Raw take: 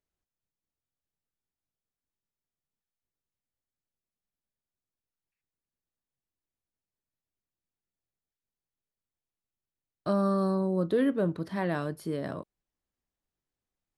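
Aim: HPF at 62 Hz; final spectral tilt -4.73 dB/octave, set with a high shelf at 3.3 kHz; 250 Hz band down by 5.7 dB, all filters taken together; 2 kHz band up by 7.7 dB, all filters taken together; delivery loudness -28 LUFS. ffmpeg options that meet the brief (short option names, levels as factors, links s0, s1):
-af "highpass=62,equalizer=f=250:t=o:g=-8.5,equalizer=f=2000:t=o:g=8.5,highshelf=f=3300:g=4,volume=1.5"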